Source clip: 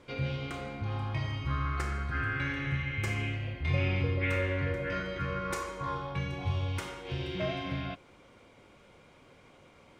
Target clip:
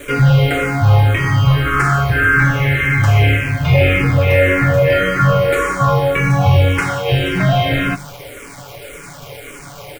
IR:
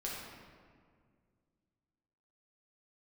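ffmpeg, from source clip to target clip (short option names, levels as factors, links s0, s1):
-filter_complex "[0:a]acrossover=split=430[s0][s1];[s1]acompressor=threshold=0.02:ratio=6[s2];[s0][s2]amix=inputs=2:normalize=0,aemphasis=mode=production:type=50kf,aecho=1:1:7:0.83,bandreject=f=48.59:t=h:w=4,bandreject=f=97.18:t=h:w=4,bandreject=f=145.77:t=h:w=4,bandreject=f=194.36:t=h:w=4,apsyclip=26.6,acrossover=split=3500[s3][s4];[s4]acompressor=threshold=0.0316:ratio=4:attack=1:release=60[s5];[s3][s5]amix=inputs=2:normalize=0,equalizer=f=250:t=o:w=1:g=-8,equalizer=f=1000:t=o:w=1:g=-4,equalizer=f=4000:t=o:w=1:g=-9,acrusher=bits=6:dc=4:mix=0:aa=0.000001,asplit=2[s6][s7];[s7]afreqshift=-1.8[s8];[s6][s8]amix=inputs=2:normalize=1,volume=0.794"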